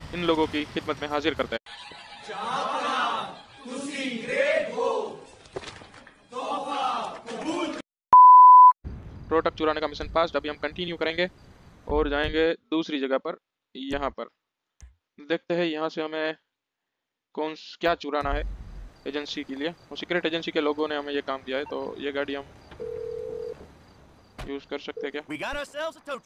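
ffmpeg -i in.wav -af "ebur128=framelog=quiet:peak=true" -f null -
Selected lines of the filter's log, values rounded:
Integrated loudness:
  I:         -23.6 LUFS
  Threshold: -34.8 LUFS
Loudness range:
  LRA:        16.2 LU
  Threshold: -44.6 LUFS
  LRA low:   -33.2 LUFS
  LRA high:  -17.0 LUFS
True peak:
  Peak:       -6.8 dBFS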